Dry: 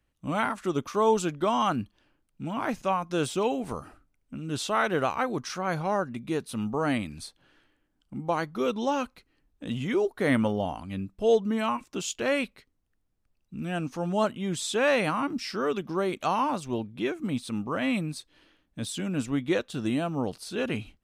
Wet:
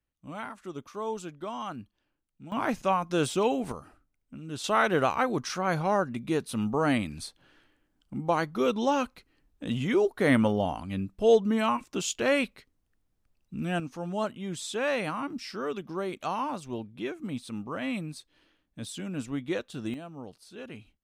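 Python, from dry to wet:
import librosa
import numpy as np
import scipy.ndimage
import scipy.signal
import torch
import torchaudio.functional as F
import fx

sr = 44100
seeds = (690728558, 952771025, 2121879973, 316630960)

y = fx.gain(x, sr, db=fx.steps((0.0, -11.0), (2.52, 1.0), (3.72, -5.5), (4.64, 1.5), (13.8, -5.0), (19.94, -13.0)))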